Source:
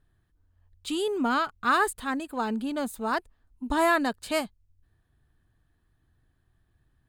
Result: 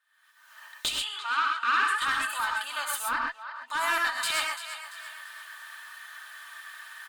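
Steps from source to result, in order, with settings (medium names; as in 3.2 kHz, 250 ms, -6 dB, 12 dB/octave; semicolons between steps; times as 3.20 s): recorder AGC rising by 58 dB/s; comb 3.3 ms, depth 42%; in parallel at +2 dB: peak limiter -21 dBFS, peak gain reduction 10.5 dB; on the sum: high-pass 1.2 kHz 24 dB/octave; treble shelf 2.7 kHz -5 dB; feedback delay 341 ms, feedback 39%, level -11.5 dB; one-sided clip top -23.5 dBFS; 0.92–2.02 s: band-pass filter 1.9 kHz, Q 0.65; 3.06–3.68 s: distance through air 210 m; gated-style reverb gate 150 ms rising, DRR 1 dB; trim -1 dB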